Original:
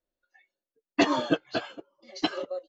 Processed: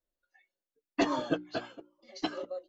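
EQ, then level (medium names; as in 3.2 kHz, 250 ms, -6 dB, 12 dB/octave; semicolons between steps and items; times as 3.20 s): hum notches 60/120/180/240/300/360 Hz; dynamic bell 2.9 kHz, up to -4 dB, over -43 dBFS, Q 0.88; bass shelf 61 Hz +7 dB; -4.5 dB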